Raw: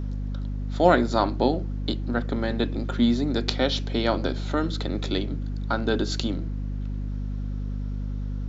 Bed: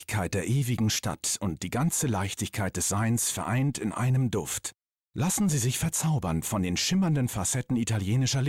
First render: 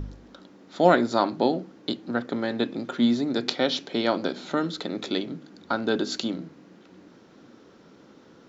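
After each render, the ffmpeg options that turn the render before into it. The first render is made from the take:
-af "bandreject=f=50:t=h:w=4,bandreject=f=100:t=h:w=4,bandreject=f=150:t=h:w=4,bandreject=f=200:t=h:w=4,bandreject=f=250:t=h:w=4"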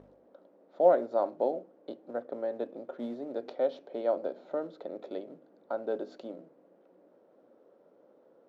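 -af "acrusher=bits=5:mode=log:mix=0:aa=0.000001,bandpass=f=570:t=q:w=3.7:csg=0"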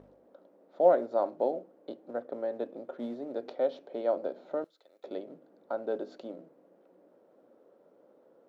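-filter_complex "[0:a]asettb=1/sr,asplit=3[s0][s1][s2];[s0]atrim=end=4.644[s3];[s1]atrim=start=4.64:end=5.04,asetpts=PTS-STARTPTS,afade=t=in:d=0.004:c=qsin,afade=t=out:st=0.396:d=0.004:c=qsin,aderivative[s4];[s2]atrim=start=5.036[s5];[s3][s4]acrossfade=d=0.004:c1=hsin:c2=qsin[s6];[s6][s5]acrossfade=d=0.004:c1=qsin:c2=hsin"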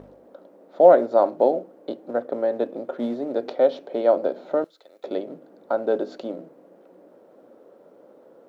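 -af "volume=3.35,alimiter=limit=0.794:level=0:latency=1"

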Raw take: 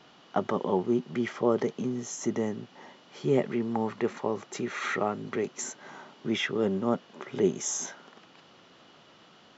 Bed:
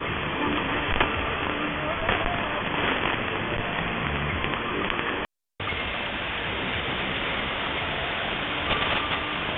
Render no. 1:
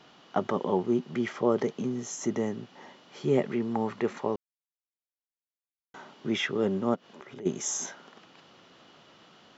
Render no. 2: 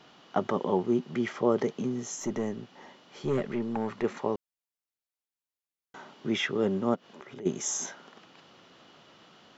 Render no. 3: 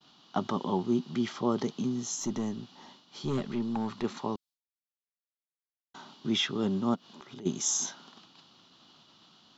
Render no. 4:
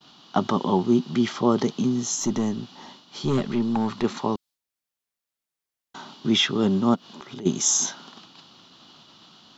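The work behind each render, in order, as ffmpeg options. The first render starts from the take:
-filter_complex "[0:a]asplit=3[s0][s1][s2];[s0]afade=t=out:st=6.94:d=0.02[s3];[s1]acompressor=threshold=0.00631:ratio=3:attack=3.2:release=140:knee=1:detection=peak,afade=t=in:st=6.94:d=0.02,afade=t=out:st=7.45:d=0.02[s4];[s2]afade=t=in:st=7.45:d=0.02[s5];[s3][s4][s5]amix=inputs=3:normalize=0,asplit=3[s6][s7][s8];[s6]atrim=end=4.36,asetpts=PTS-STARTPTS,afade=t=out:st=4.356:d=0.004:c=hsin[s9];[s7]atrim=start=4.36:end=5.94,asetpts=PTS-STARTPTS,volume=0[s10];[s8]atrim=start=5.94,asetpts=PTS-STARTPTS,afade=t=in:d=0.004:c=hsin[s11];[s9][s10][s11]concat=n=3:v=0:a=1"
-filter_complex "[0:a]asettb=1/sr,asplit=3[s0][s1][s2];[s0]atrim=end=2.204[s3];[s1]atrim=start=2.2:end=4.04,asetpts=PTS-STARTPTS,afade=t=in:d=0.004:c=qsin,afade=t=out:st=1.836:d=0.004:c=qsin,aeval=exprs='(tanh(12.6*val(0)+0.35)-tanh(0.35))/12.6':c=same[s4];[s2]atrim=start=4.036[s5];[s3][s4]acrossfade=d=0.004:c1=hsin:c2=qsin[s6];[s6][s5]acrossfade=d=0.004:c1=qsin:c2=hsin"
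-af "agate=range=0.0224:threshold=0.00282:ratio=3:detection=peak,equalizer=f=250:t=o:w=1:g=3,equalizer=f=500:t=o:w=1:g=-10,equalizer=f=1000:t=o:w=1:g=3,equalizer=f=2000:t=o:w=1:g=-9,equalizer=f=4000:t=o:w=1:g=10"
-af "volume=2.51"

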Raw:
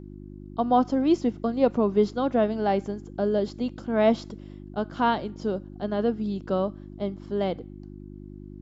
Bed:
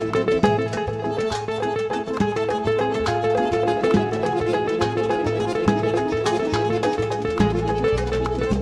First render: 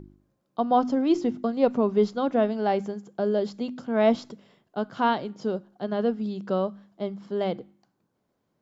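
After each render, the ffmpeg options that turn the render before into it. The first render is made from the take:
-af "bandreject=f=50:t=h:w=4,bandreject=f=100:t=h:w=4,bandreject=f=150:t=h:w=4,bandreject=f=200:t=h:w=4,bandreject=f=250:t=h:w=4,bandreject=f=300:t=h:w=4,bandreject=f=350:t=h:w=4"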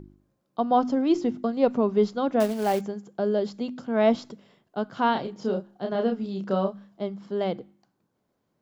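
-filter_complex "[0:a]asettb=1/sr,asplit=3[s0][s1][s2];[s0]atrim=end=2.404[s3];[s1]atrim=start=2.4:end=2.81,asetpts=PTS-STARTPTS,afade=t=in:d=0.004:c=qsin,afade=t=out:st=0.406:d=0.004:c=qsin,acrusher=bits=4:mode=log:mix=0:aa=0.000001[s4];[s2]atrim=start=2.806[s5];[s3][s4]acrossfade=d=0.004:c1=hsin:c2=qsin[s6];[s6][s5]acrossfade=d=0.004:c1=qsin:c2=hsin,asettb=1/sr,asplit=3[s7][s8][s9];[s7]atrim=end=5.124[s10];[s8]atrim=start=5.12:end=7.03,asetpts=PTS-STARTPTS,afade=t=in:d=0.004:c=qsin,afade=t=out:st=1.906:d=0.004:c=qsin,asplit=2[s11][s12];[s12]adelay=31,volume=0.631[s13];[s11][s13]amix=inputs=2:normalize=0,atrim=end_sample=84231[s14];[s9]atrim=start=7.026[s15];[s10][s14]acrossfade=d=0.004:c1=hsin:c2=qsin[s16];[s16][s15]acrossfade=d=0.004:c1=qsin:c2=hsin"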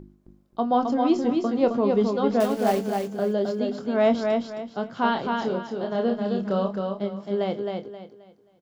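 -filter_complex "[0:a]asplit=2[s0][s1];[s1]adelay=25,volume=0.335[s2];[s0][s2]amix=inputs=2:normalize=0,aecho=1:1:265|530|795|1060:0.631|0.189|0.0568|0.017"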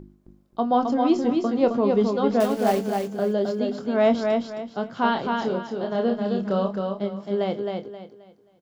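-af "volume=1.12"

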